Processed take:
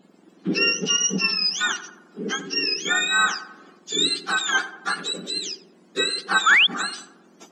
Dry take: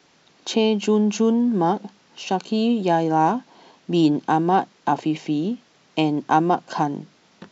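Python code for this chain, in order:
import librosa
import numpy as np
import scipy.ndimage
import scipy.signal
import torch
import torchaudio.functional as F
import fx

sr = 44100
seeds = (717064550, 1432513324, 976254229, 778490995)

y = fx.octave_mirror(x, sr, pivot_hz=1100.0)
y = fx.echo_filtered(y, sr, ms=90, feedback_pct=65, hz=1500.0, wet_db=-11.5)
y = fx.spec_paint(y, sr, seeds[0], shape='rise', start_s=6.46, length_s=0.21, low_hz=1200.0, high_hz=3600.0, level_db=-15.0)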